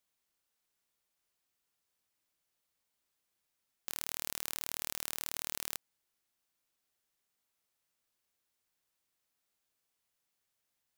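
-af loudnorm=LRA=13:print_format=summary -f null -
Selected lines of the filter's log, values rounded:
Input Integrated:    -38.1 LUFS
Input True Peak:      -9.8 dBTP
Input LRA:            11.6 LU
Input Threshold:     -48.3 LUFS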